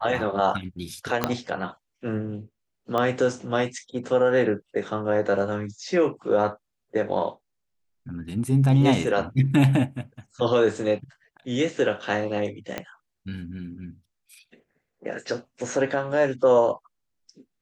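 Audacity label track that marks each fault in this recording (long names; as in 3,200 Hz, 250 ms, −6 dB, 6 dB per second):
1.240000	1.240000	click −7 dBFS
2.980000	2.980000	click −14 dBFS
12.780000	12.780000	click −14 dBFS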